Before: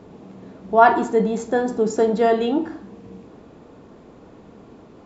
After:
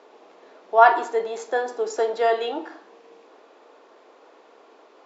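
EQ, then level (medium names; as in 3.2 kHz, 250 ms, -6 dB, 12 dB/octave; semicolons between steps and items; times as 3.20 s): Bessel high-pass 610 Hz, order 6; low-pass 6.6 kHz 24 dB/octave; +1.0 dB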